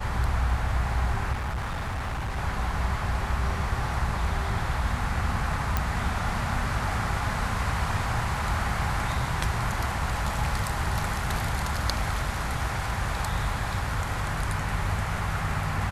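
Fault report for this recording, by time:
0:01.32–0:02.38: clipping −27 dBFS
0:05.77: click −10 dBFS

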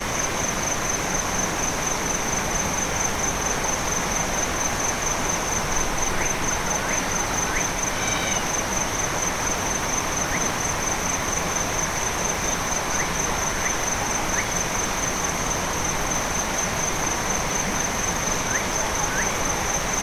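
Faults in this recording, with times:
surface crackle 91 per second −31 dBFS

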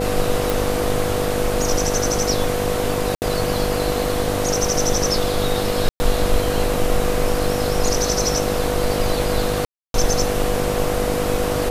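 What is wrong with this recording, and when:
mains buzz 50 Hz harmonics 15 −25 dBFS
whistle 490 Hz −23 dBFS
0:00.50: click
0:03.15–0:03.22: drop-out 69 ms
0:05.89–0:06.00: drop-out 110 ms
0:09.65–0:09.94: drop-out 292 ms

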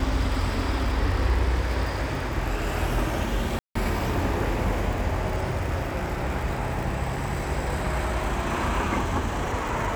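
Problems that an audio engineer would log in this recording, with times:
surface crackle 110 per second −32 dBFS
0:03.59–0:03.75: drop-out 164 ms

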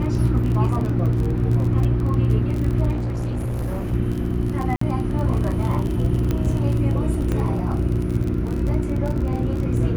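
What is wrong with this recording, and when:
surface crackle 31 per second −25 dBFS
mains hum 60 Hz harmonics 6 −25 dBFS
0:02.91–0:03.94: clipping −21.5 dBFS
0:04.76–0:04.81: drop-out 54 ms
0:06.31: click −11 dBFS
0:07.32: click −13 dBFS

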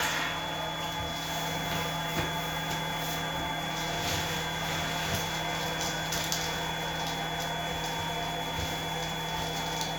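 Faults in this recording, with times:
whistle 3,400 Hz −38 dBFS

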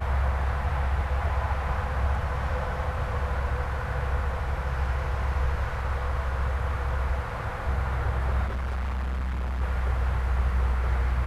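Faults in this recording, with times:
0:08.46–0:09.62: clipping −26.5 dBFS

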